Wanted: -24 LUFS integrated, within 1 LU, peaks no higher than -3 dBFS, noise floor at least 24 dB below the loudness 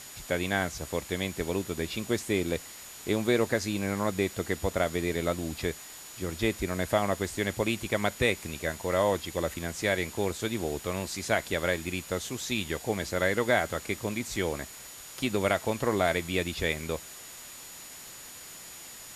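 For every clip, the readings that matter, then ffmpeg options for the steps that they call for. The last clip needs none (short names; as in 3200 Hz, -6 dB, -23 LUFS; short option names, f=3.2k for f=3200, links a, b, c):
steady tone 6900 Hz; tone level -49 dBFS; noise floor -46 dBFS; noise floor target -54 dBFS; loudness -30.0 LUFS; peak -9.5 dBFS; loudness target -24.0 LUFS
-> -af "bandreject=f=6.9k:w=30"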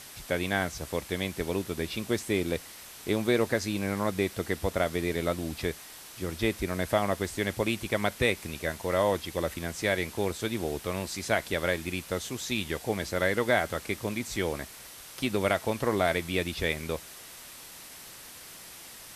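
steady tone none; noise floor -47 dBFS; noise floor target -54 dBFS
-> -af "afftdn=nr=7:nf=-47"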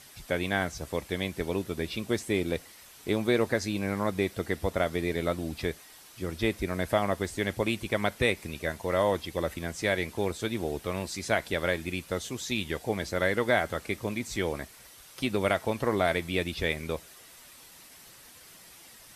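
noise floor -52 dBFS; noise floor target -54 dBFS
-> -af "afftdn=nr=6:nf=-52"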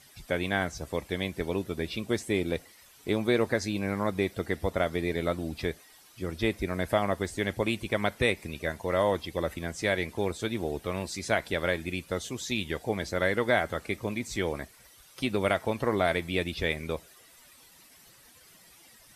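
noise floor -56 dBFS; loudness -30.0 LUFS; peak -9.5 dBFS; loudness target -24.0 LUFS
-> -af "volume=6dB"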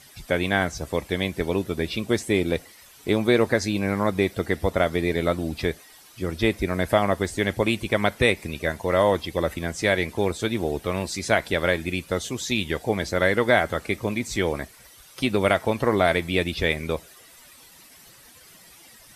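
loudness -24.0 LUFS; peak -3.5 dBFS; noise floor -50 dBFS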